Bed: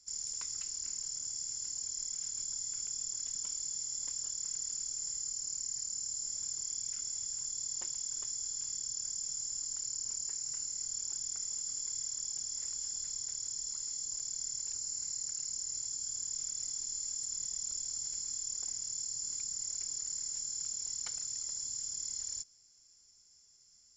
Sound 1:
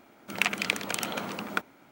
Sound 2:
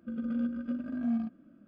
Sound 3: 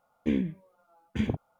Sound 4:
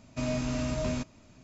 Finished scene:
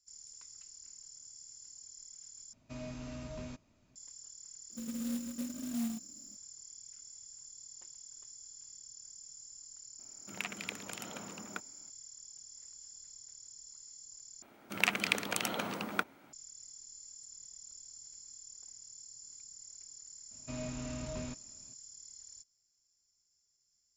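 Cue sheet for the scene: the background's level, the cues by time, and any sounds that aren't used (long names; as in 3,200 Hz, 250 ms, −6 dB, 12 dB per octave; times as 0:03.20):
bed −13 dB
0:02.53: overwrite with 4 −13 dB
0:04.70: mix in 2 −5.5 dB + converter with an unsteady clock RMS 0.13 ms
0:09.99: mix in 1 −13.5 dB + low-shelf EQ 220 Hz +6 dB
0:14.42: overwrite with 1 −3 dB
0:20.31: mix in 4 −10 dB
not used: 3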